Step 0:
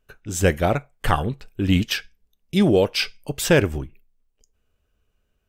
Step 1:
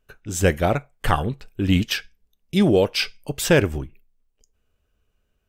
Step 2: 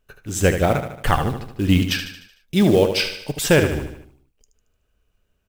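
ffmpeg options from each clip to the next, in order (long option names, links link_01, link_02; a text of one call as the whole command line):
ffmpeg -i in.wav -af anull out.wav
ffmpeg -i in.wav -af "acrusher=bits=6:mode=log:mix=0:aa=0.000001,aecho=1:1:75|150|225|300|375|450:0.376|0.192|0.0978|0.0499|0.0254|0.013,volume=1dB" out.wav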